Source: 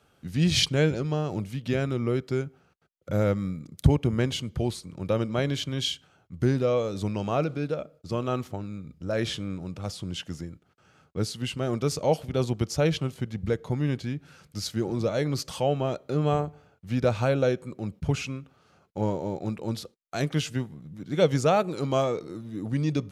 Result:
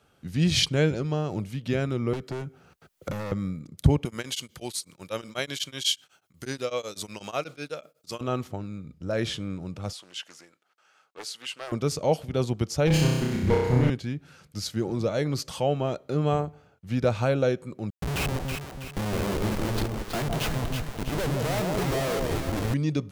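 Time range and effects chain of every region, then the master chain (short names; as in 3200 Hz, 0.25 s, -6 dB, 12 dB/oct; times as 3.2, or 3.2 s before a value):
2.13–3.32 high shelf 8100 Hz +4.5 dB + hard clip -30.5 dBFS + three-band squash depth 100%
4.05–8.21 tilt +4 dB/oct + beating tremolo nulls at 8.1 Hz
9.93–11.72 HPF 790 Hz + Doppler distortion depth 0.42 ms
12.87–13.9 minimum comb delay 0.42 ms + sample leveller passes 1 + flutter echo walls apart 5.5 m, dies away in 1.2 s
17.9–22.74 LPF 5500 Hz + Schmitt trigger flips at -36 dBFS + echo with dull and thin repeats by turns 0.162 s, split 920 Hz, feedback 67%, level -2 dB
whole clip: dry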